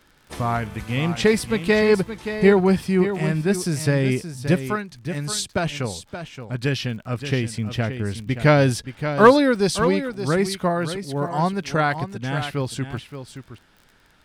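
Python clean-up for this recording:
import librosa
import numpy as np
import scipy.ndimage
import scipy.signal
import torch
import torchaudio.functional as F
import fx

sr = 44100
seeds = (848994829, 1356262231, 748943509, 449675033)

y = fx.fix_declick_ar(x, sr, threshold=6.5)
y = fx.fix_echo_inverse(y, sr, delay_ms=574, level_db=-10.0)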